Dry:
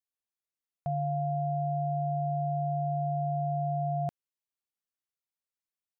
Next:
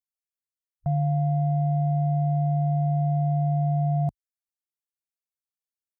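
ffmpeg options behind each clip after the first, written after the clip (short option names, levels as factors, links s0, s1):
-af "afwtdn=0.00891,bass=f=250:g=11,treble=f=4000:g=13"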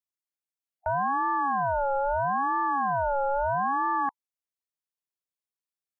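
-af "aeval=exprs='val(0)*sin(2*PI*860*n/s+860*0.2/0.77*sin(2*PI*0.77*n/s))':c=same"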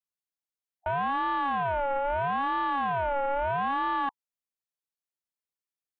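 -af "aeval=exprs='0.133*(cos(1*acos(clip(val(0)/0.133,-1,1)))-cos(1*PI/2))+0.0168*(cos(3*acos(clip(val(0)/0.133,-1,1)))-cos(3*PI/2))':c=same"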